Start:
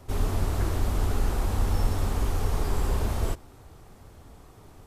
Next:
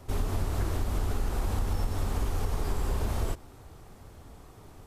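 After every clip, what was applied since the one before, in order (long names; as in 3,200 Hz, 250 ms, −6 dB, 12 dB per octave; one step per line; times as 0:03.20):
downward compressor, threshold −24 dBFS, peak gain reduction 7.5 dB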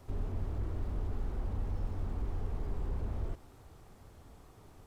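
slew-rate limiting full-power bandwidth 6.2 Hz
level −6 dB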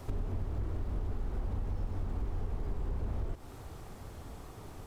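downward compressor 6 to 1, threshold −40 dBFS, peak gain reduction 10.5 dB
level +9 dB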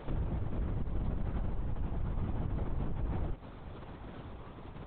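linear-prediction vocoder at 8 kHz whisper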